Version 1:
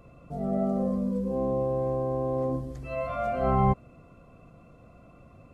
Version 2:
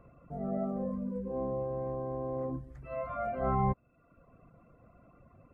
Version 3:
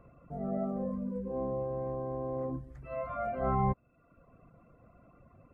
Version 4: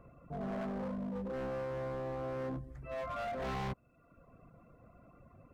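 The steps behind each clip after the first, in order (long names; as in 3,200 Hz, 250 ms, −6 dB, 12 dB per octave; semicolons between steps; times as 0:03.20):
reverb reduction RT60 0.76 s; high shelf with overshoot 2,600 Hz −11.5 dB, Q 1.5; level −5 dB
no processing that can be heard
hard clipping −36 dBFS, distortion −6 dB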